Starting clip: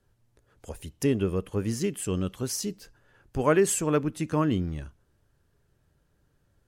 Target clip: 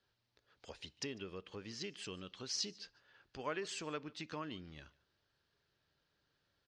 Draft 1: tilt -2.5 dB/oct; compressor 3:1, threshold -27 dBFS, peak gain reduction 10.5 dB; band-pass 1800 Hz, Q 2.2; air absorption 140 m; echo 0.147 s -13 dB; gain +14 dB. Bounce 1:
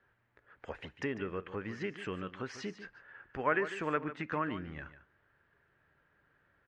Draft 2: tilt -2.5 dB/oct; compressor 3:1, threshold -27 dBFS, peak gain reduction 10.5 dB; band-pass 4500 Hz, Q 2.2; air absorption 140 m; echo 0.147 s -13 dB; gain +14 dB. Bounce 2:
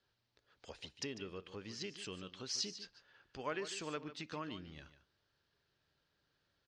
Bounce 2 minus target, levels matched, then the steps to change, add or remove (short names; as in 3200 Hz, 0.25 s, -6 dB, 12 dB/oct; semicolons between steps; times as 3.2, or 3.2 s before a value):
echo-to-direct +11 dB
change: echo 0.147 s -24 dB